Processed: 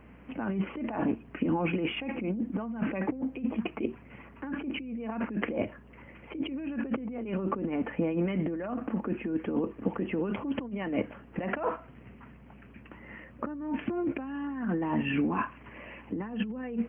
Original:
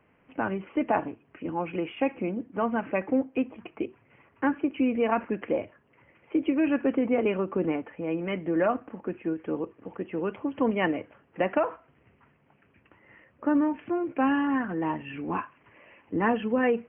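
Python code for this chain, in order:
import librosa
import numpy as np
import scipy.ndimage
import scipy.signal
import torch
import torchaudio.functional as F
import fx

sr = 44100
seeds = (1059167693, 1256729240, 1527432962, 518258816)

y = fx.peak_eq(x, sr, hz=220.0, db=9.5, octaves=0.56)
y = fx.over_compress(y, sr, threshold_db=-32.0, ratio=-1.0)
y = fx.add_hum(y, sr, base_hz=60, snr_db=23)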